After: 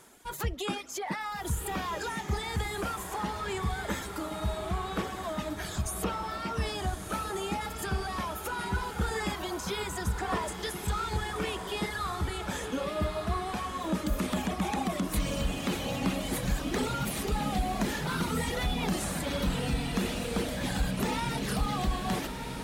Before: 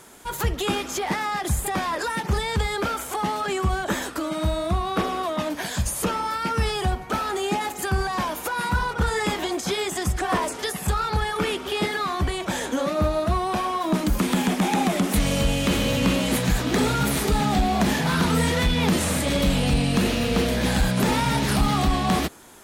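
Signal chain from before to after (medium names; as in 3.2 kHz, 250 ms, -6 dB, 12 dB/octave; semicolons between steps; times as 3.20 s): reverb removal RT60 1.7 s; on a send: echo that smears into a reverb 1254 ms, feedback 49%, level -6.5 dB; on the sum: trim -7.5 dB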